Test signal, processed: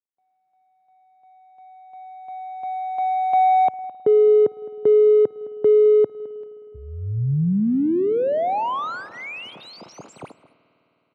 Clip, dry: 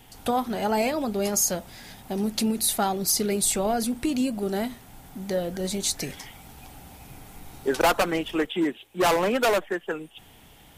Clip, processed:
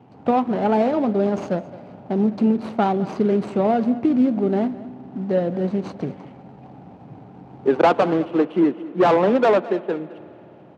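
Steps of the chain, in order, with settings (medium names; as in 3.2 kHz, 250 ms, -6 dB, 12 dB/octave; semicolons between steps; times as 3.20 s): median filter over 25 samples; high-pass 120 Hz 24 dB/octave; tape spacing loss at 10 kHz 28 dB; on a send: delay 212 ms -18.5 dB; on the sum: spring tank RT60 3.8 s, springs 52 ms, chirp 25 ms, DRR 19 dB; trim +8.5 dB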